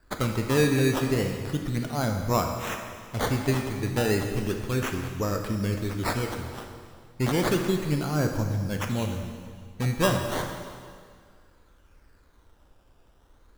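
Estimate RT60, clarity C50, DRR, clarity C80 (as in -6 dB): 2.0 s, 5.0 dB, 3.5 dB, 6.0 dB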